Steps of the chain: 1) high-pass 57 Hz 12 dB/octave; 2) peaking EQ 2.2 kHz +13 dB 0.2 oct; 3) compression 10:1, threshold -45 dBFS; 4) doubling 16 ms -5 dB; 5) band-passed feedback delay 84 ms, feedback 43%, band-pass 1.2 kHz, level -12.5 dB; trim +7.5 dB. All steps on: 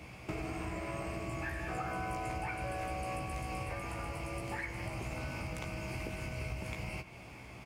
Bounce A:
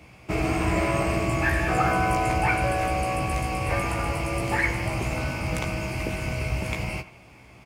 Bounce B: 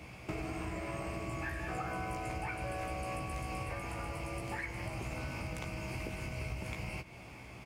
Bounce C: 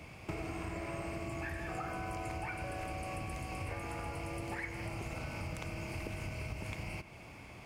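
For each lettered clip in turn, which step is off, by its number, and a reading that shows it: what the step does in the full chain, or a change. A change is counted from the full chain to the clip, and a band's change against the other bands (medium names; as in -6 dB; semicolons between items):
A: 3, mean gain reduction 11.5 dB; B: 5, echo-to-direct -13.5 dB to none; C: 4, loudness change -1.5 LU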